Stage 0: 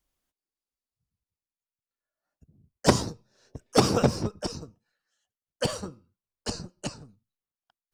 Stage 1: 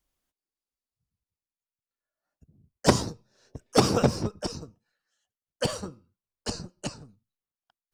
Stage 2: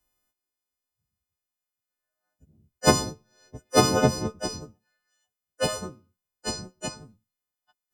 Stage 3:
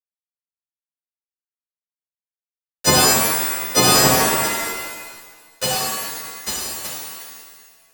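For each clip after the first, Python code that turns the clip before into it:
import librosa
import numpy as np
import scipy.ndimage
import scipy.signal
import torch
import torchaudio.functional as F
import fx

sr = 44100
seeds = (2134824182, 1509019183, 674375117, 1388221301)

y1 = x
y2 = fx.freq_snap(y1, sr, grid_st=3)
y2 = fx.high_shelf(y2, sr, hz=2300.0, db=-10.5)
y2 = F.gain(torch.from_numpy(y2), 2.5).numpy()
y3 = fx.high_shelf(y2, sr, hz=2100.0, db=11.5)
y3 = np.where(np.abs(y3) >= 10.0 ** (-17.5 / 20.0), y3, 0.0)
y3 = fx.rev_shimmer(y3, sr, seeds[0], rt60_s=1.4, semitones=7, shimmer_db=-2, drr_db=-4.0)
y3 = F.gain(torch.from_numpy(y3), -2.5).numpy()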